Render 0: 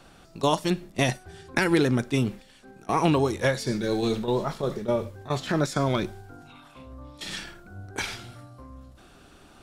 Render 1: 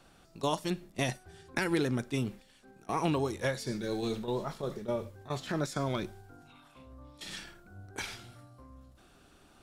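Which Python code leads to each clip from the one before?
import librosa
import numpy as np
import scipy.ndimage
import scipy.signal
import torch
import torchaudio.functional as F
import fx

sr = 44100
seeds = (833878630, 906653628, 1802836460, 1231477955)

y = fx.high_shelf(x, sr, hz=8500.0, db=4.0)
y = F.gain(torch.from_numpy(y), -8.0).numpy()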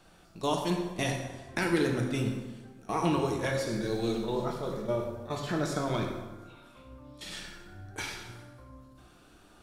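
y = fx.rev_plate(x, sr, seeds[0], rt60_s=1.3, hf_ratio=0.65, predelay_ms=0, drr_db=1.0)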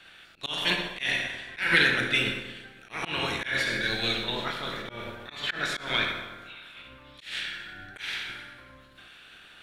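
y = fx.spec_clip(x, sr, under_db=12)
y = fx.band_shelf(y, sr, hz=2400.0, db=15.5, octaves=1.7)
y = fx.auto_swell(y, sr, attack_ms=175.0)
y = F.gain(torch.from_numpy(y), -3.0).numpy()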